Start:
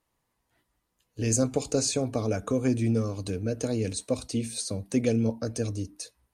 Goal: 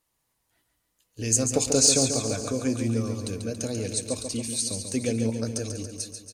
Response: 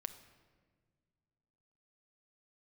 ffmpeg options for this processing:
-filter_complex "[0:a]highshelf=frequency=3200:gain=10,asettb=1/sr,asplit=3[link_01][link_02][link_03];[link_01]atrim=end=1.514[link_04];[link_02]atrim=start=1.51:end=2.1,asetpts=PTS-STARTPTS,afade=type=in:duration=0.004:curve=qsin,afade=type=out:start_time=0.586:duration=0.004:curve=qsin,acontrast=32[link_05];[link_03]atrim=start=2.096[link_06];[link_04][link_05]acrossfade=duration=0.004:curve1=hsin:curve2=qsin[link_07];[link_07][link_06]acrossfade=duration=0.004:curve1=qsin:curve2=hsin,aecho=1:1:140|280|420|560|700|840|980:0.447|0.259|0.15|0.0872|0.0505|0.0293|0.017,volume=-3dB"

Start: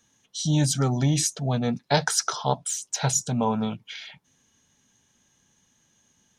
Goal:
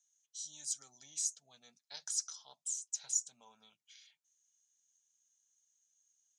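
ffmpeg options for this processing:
ffmpeg -i in.wav -af "bandpass=frequency=7100:width_type=q:width=2.9:csg=0,volume=-7dB" out.wav

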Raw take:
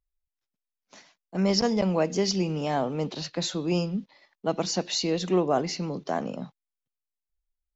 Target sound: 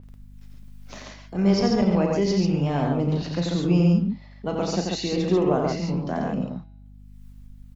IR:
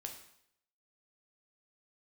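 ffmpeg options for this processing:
-af "bass=frequency=250:gain=8,treble=frequency=4000:gain=-4,bandreject=frequency=162.9:width_type=h:width=4,bandreject=frequency=325.8:width_type=h:width=4,bandreject=frequency=488.7:width_type=h:width=4,bandreject=frequency=651.6:width_type=h:width=4,bandreject=frequency=814.5:width_type=h:width=4,bandreject=frequency=977.4:width_type=h:width=4,bandreject=frequency=1140.3:width_type=h:width=4,bandreject=frequency=1303.2:width_type=h:width=4,bandreject=frequency=1466.1:width_type=h:width=4,bandreject=frequency=1629:width_type=h:width=4,bandreject=frequency=1791.9:width_type=h:width=4,bandreject=frequency=1954.8:width_type=h:width=4,bandreject=frequency=2117.7:width_type=h:width=4,bandreject=frequency=2280.6:width_type=h:width=4,bandreject=frequency=2443.5:width_type=h:width=4,bandreject=frequency=2606.4:width_type=h:width=4,bandreject=frequency=2769.3:width_type=h:width=4,bandreject=frequency=2932.2:width_type=h:width=4,bandreject=frequency=3095.1:width_type=h:width=4,bandreject=frequency=3258:width_type=h:width=4,bandreject=frequency=3420.9:width_type=h:width=4,bandreject=frequency=3583.8:width_type=h:width=4,bandreject=frequency=3746.7:width_type=h:width=4,bandreject=frequency=3909.6:width_type=h:width=4,bandreject=frequency=4072.5:width_type=h:width=4,bandreject=frequency=4235.4:width_type=h:width=4,bandreject=frequency=4398.3:width_type=h:width=4,bandreject=frequency=4561.2:width_type=h:width=4,bandreject=frequency=4724.1:width_type=h:width=4,bandreject=frequency=4887:width_type=h:width=4,bandreject=frequency=5049.9:width_type=h:width=4,bandreject=frequency=5212.8:width_type=h:width=4,bandreject=frequency=5375.7:width_type=h:width=4,acompressor=mode=upward:threshold=-30dB:ratio=2.5,aphaser=in_gain=1:out_gain=1:delay=2.6:decay=0.21:speed=0.3:type=sinusoidal,aecho=1:1:34.99|87.46|139.9:0.355|0.631|0.708,aeval=exprs='val(0)+0.00708*(sin(2*PI*50*n/s)+sin(2*PI*2*50*n/s)/2+sin(2*PI*3*50*n/s)/3+sin(2*PI*4*50*n/s)/4+sin(2*PI*5*50*n/s)/5)':channel_layout=same,adynamicequalizer=threshold=0.00708:dfrequency=3400:dqfactor=0.7:tfrequency=3400:tqfactor=0.7:attack=5:release=100:ratio=0.375:range=2:mode=cutabove:tftype=highshelf,volume=-1.5dB"

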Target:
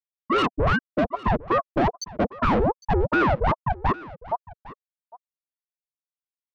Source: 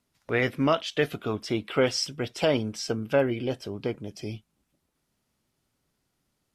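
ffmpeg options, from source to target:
ffmpeg -i in.wav -filter_complex "[0:a]aeval=exprs='val(0)+0.5*0.0188*sgn(val(0))':channel_layout=same,aemphasis=mode=reproduction:type=cd,afftfilt=real='re*gte(hypot(re,im),0.282)':imag='im*gte(hypot(re,im),0.282)':win_size=1024:overlap=0.75,equalizer=frequency=250:width_type=o:width=0.33:gain=-10,equalizer=frequency=1250:width_type=o:width=0.33:gain=-10,equalizer=frequency=10000:width_type=o:width=0.33:gain=-6,dynaudnorm=framelen=590:gausssize=5:maxgain=8dB,asplit=2[link_01][link_02];[link_02]alimiter=limit=-15.5dB:level=0:latency=1:release=22,volume=-1dB[link_03];[link_01][link_03]amix=inputs=2:normalize=0,asplit=2[link_04][link_05];[link_05]highpass=frequency=720:poles=1,volume=33dB,asoftclip=type=tanh:threshold=-3.5dB[link_06];[link_04][link_06]amix=inputs=2:normalize=0,lowpass=frequency=1200:poles=1,volume=-6dB,asoftclip=type=tanh:threshold=-11dB,asplit=2[link_07][link_08];[link_08]aecho=0:1:806:0.106[link_09];[link_07][link_09]amix=inputs=2:normalize=0,aeval=exprs='val(0)*sin(2*PI*520*n/s+520*0.75/2.5*sin(2*PI*2.5*n/s))':channel_layout=same,volume=-3dB" out.wav

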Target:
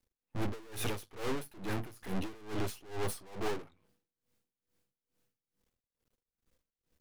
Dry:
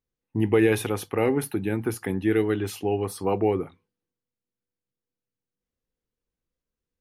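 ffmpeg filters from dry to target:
ffmpeg -i in.wav -af "aeval=exprs='(tanh(70.8*val(0)+0.45)-tanh(0.45))/70.8':channel_layout=same,aeval=exprs='max(val(0),0)':channel_layout=same,aeval=exprs='val(0)*pow(10,-22*(0.5-0.5*cos(2*PI*2.3*n/s))/20)':channel_layout=same,volume=15.5dB" out.wav

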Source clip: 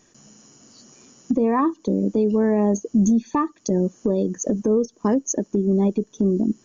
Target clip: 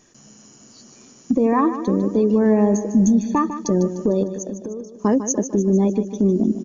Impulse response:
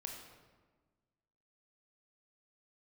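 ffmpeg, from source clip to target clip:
-filter_complex "[0:a]asettb=1/sr,asplit=3[link_01][link_02][link_03];[link_01]atrim=end=4.234[link_04];[link_02]atrim=start=4.23:end=4.99,asetpts=PTS-STARTPTS,afade=type=in:duration=0.004:curve=qsin,afade=type=out:start_time=0.756:duration=0.004:curve=qsin,acompressor=threshold=-31dB:ratio=6[link_05];[link_03]atrim=start=4.986[link_06];[link_04][link_05]acrossfade=duration=0.004:curve1=hsin:curve2=qsin[link_07];[link_07][link_06]acrossfade=duration=0.004:curve1=qsin:curve2=hsin,aecho=1:1:151|302|453|604|755|906:0.282|0.149|0.0792|0.042|0.0222|0.0118,volume=2dB"

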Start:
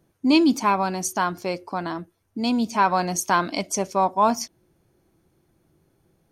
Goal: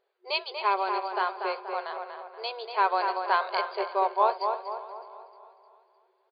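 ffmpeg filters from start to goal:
ffmpeg -i in.wav -filter_complex "[0:a]asplit=2[link_01][link_02];[link_02]adelay=239,lowpass=frequency=2300:poles=1,volume=-5dB,asplit=2[link_03][link_04];[link_04]adelay=239,lowpass=frequency=2300:poles=1,volume=0.47,asplit=2[link_05][link_06];[link_06]adelay=239,lowpass=frequency=2300:poles=1,volume=0.47,asplit=2[link_07][link_08];[link_08]adelay=239,lowpass=frequency=2300:poles=1,volume=0.47,asplit=2[link_09][link_10];[link_10]adelay=239,lowpass=frequency=2300:poles=1,volume=0.47,asplit=2[link_11][link_12];[link_12]adelay=239,lowpass=frequency=2300:poles=1,volume=0.47[link_13];[link_03][link_05][link_07][link_09][link_11][link_13]amix=inputs=6:normalize=0[link_14];[link_01][link_14]amix=inputs=2:normalize=0,afftfilt=real='re*between(b*sr/4096,360,4900)':imag='im*between(b*sr/4096,360,4900)':win_size=4096:overlap=0.75,asplit=2[link_15][link_16];[link_16]aecho=0:1:306|612|918|1224|1530:0.141|0.0735|0.0382|0.0199|0.0103[link_17];[link_15][link_17]amix=inputs=2:normalize=0,volume=-4.5dB" out.wav

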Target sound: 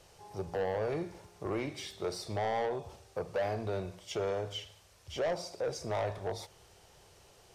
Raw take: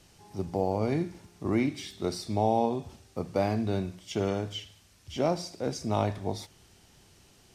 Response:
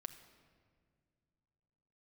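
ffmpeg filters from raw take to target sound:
-filter_complex "[0:a]equalizer=frequency=250:width_type=o:width=1:gain=-11,equalizer=frequency=500:width_type=o:width=1:gain=10,equalizer=frequency=1000:width_type=o:width=1:gain=4,asplit=2[link_01][link_02];[link_02]acompressor=threshold=-30dB:ratio=6,volume=-2dB[link_03];[link_01][link_03]amix=inputs=2:normalize=0,asoftclip=type=tanh:threshold=-20.5dB,volume=-7dB"

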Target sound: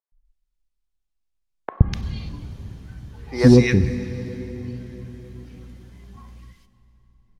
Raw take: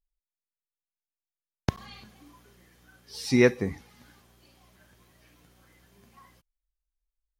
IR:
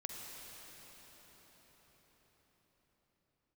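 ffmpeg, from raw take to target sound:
-filter_complex "[0:a]aemphasis=mode=reproduction:type=riaa,acrossover=split=490|1700[link_01][link_02][link_03];[link_01]adelay=120[link_04];[link_03]adelay=250[link_05];[link_04][link_02][link_05]amix=inputs=3:normalize=0,asplit=2[link_06][link_07];[1:a]atrim=start_sample=2205,asetrate=66150,aresample=44100[link_08];[link_07][link_08]afir=irnorm=-1:irlink=0,volume=-3.5dB[link_09];[link_06][link_09]amix=inputs=2:normalize=0,asoftclip=type=tanh:threshold=-3.5dB,highshelf=frequency=2900:gain=11,volume=2.5dB"

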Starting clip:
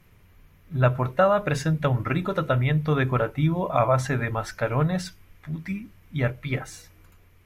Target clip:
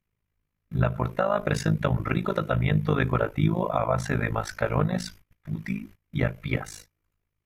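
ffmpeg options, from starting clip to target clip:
ffmpeg -i in.wav -af "agate=range=-25dB:threshold=-45dB:ratio=16:detection=peak,alimiter=limit=-14dB:level=0:latency=1:release=280,tremolo=f=53:d=0.889,volume=4dB" out.wav

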